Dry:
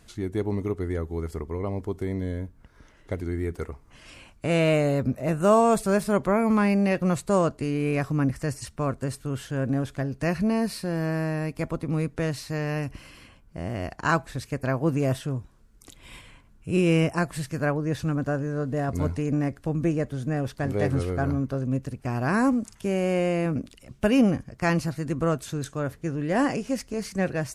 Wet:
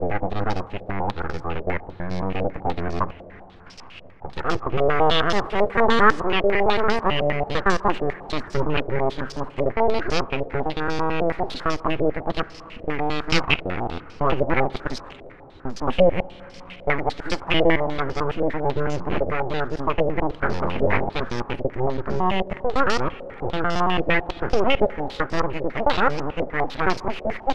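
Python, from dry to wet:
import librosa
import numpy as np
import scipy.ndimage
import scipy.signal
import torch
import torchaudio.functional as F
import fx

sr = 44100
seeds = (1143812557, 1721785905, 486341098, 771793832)

p1 = fx.block_reorder(x, sr, ms=111.0, group=8)
p2 = fx.rider(p1, sr, range_db=3, speed_s=2.0)
p3 = p1 + F.gain(torch.from_numpy(p2), -1.0).numpy()
p4 = np.abs(p3)
p5 = fx.rev_plate(p4, sr, seeds[0], rt60_s=4.8, hf_ratio=0.75, predelay_ms=0, drr_db=15.5)
p6 = fx.filter_held_lowpass(p5, sr, hz=10.0, low_hz=590.0, high_hz=5200.0)
y = F.gain(torch.from_numpy(p6), -2.0).numpy()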